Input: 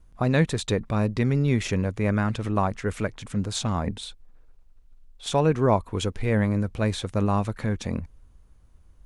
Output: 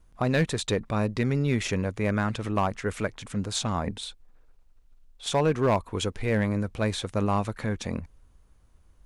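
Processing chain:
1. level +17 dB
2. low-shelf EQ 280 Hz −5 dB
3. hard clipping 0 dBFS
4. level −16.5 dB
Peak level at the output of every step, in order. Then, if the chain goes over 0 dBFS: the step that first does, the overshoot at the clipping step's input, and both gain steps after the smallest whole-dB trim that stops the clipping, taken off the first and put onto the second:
+9.0, +7.5, 0.0, −16.5 dBFS
step 1, 7.5 dB
step 1 +9 dB, step 4 −8.5 dB

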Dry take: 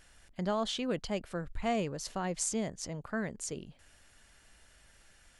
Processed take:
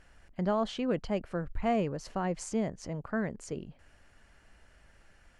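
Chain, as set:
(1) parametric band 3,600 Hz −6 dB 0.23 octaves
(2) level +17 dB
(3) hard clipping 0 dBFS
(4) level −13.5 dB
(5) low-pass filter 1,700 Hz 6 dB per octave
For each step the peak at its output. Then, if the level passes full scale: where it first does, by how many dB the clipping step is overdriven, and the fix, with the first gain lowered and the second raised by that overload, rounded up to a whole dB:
−19.5, −2.5, −2.5, −16.0, −17.5 dBFS
no step passes full scale

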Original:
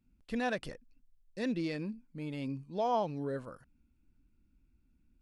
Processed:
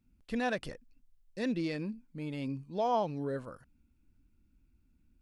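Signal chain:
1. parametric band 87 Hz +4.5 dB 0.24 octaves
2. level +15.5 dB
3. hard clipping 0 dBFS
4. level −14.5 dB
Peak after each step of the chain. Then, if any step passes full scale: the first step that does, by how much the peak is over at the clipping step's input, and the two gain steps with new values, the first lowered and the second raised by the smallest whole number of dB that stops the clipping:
−20.5, −5.0, −5.0, −19.5 dBFS
no step passes full scale

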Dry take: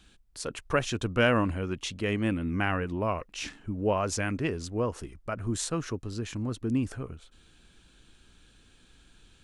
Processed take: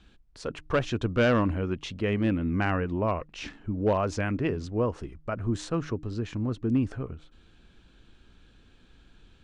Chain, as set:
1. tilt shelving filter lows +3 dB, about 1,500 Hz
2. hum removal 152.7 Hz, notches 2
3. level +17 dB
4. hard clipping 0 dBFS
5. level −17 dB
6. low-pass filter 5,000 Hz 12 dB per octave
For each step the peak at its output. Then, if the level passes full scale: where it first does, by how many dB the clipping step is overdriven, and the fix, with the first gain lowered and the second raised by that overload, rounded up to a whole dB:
−10.0, −10.0, +7.0, 0.0, −17.0, −16.5 dBFS
step 3, 7.0 dB
step 3 +10 dB, step 5 −10 dB

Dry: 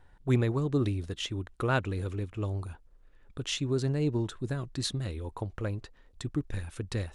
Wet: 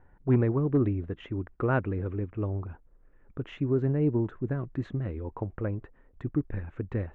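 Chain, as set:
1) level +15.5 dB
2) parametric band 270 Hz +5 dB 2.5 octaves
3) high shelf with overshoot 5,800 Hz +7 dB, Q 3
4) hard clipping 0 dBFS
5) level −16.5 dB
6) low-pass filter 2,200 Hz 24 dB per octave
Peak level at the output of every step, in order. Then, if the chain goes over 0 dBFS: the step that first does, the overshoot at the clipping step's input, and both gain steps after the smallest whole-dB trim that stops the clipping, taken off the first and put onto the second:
+1.0, +3.5, +3.5, 0.0, −16.5, −15.5 dBFS
step 1, 3.5 dB
step 1 +11.5 dB, step 5 −12.5 dB

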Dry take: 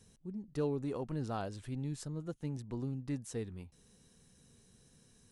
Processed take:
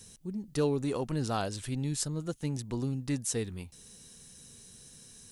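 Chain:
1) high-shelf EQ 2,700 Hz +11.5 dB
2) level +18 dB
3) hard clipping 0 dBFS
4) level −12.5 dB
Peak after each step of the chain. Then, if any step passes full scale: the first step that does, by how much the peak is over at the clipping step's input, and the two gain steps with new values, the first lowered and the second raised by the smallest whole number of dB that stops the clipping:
−20.0, −2.0, −2.0, −14.5 dBFS
no step passes full scale

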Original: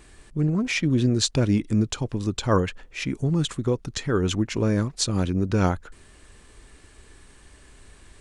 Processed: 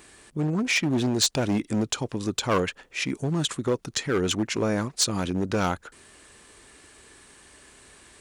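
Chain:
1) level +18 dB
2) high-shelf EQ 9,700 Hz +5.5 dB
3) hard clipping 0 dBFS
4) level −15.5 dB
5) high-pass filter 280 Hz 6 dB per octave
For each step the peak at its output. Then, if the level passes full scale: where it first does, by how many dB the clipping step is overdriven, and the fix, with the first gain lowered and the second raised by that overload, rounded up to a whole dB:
+9.0, +10.0, 0.0, −15.5, −10.5 dBFS
step 1, 10.0 dB
step 1 +8 dB, step 4 −5.5 dB

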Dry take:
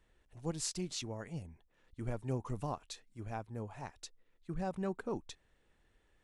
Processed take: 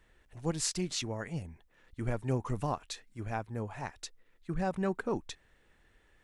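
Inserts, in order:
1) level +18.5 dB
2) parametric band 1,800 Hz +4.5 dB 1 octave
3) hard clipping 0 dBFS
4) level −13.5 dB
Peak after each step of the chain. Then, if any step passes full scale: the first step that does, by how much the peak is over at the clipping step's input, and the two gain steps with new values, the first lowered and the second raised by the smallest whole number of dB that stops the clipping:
−2.0, −2.0, −2.0, −15.5 dBFS
no step passes full scale

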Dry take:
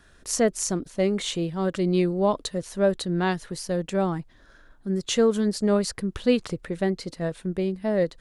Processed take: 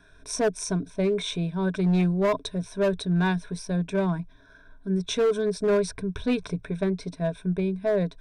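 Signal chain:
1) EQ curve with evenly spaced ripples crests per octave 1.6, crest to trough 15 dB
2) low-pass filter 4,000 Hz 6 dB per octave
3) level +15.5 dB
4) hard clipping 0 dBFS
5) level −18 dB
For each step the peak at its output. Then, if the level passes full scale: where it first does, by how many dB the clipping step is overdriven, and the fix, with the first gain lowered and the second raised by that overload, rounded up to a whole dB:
−6.0, −6.0, +9.5, 0.0, −18.0 dBFS
step 3, 9.5 dB
step 3 +5.5 dB, step 5 −8 dB

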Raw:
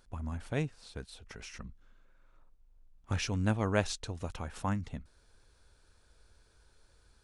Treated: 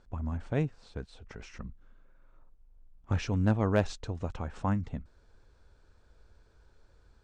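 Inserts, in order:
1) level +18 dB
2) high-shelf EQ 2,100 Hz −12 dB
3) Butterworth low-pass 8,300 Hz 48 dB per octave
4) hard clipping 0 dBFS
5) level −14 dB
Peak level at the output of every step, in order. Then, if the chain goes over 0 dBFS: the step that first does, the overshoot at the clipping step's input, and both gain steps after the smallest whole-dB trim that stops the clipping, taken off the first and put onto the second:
+4.0, +3.0, +3.0, 0.0, −14.0 dBFS
step 1, 3.0 dB
step 1 +15 dB, step 5 −11 dB

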